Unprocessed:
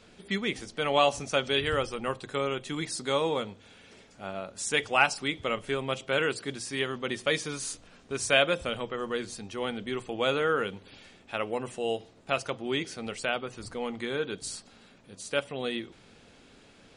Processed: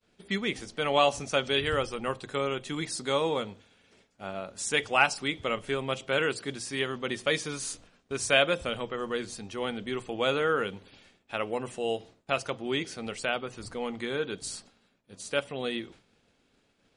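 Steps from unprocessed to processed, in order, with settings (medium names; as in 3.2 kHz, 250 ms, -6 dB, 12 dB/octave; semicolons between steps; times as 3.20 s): expander -46 dBFS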